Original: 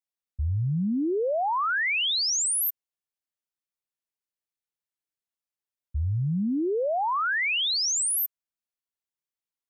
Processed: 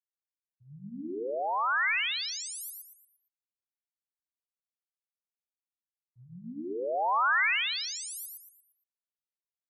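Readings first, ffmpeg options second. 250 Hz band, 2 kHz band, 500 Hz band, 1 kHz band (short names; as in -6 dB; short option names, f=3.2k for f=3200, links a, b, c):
-13.5 dB, -0.5 dB, -6.5 dB, -1.5 dB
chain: -filter_complex "[0:a]highpass=290,afftfilt=real='re*gte(hypot(re,im),0.1)':imag='im*gte(hypot(re,im),0.1)':win_size=1024:overlap=0.75,equalizer=f=3.2k:w=2:g=-4.5,acrossover=split=370|830|3000[a][b][c][d];[a]flanger=delay=20:depth=4.3:speed=1.2[e];[c]dynaudnorm=f=460:g=7:m=9dB[f];[d]alimiter=level_in=6.5dB:limit=-24dB:level=0:latency=1,volume=-6.5dB[g];[e][b][f][g]amix=inputs=4:normalize=0,aecho=1:1:116|232|348|464|580:0.708|0.262|0.0969|0.0359|0.0133,volume=-8.5dB"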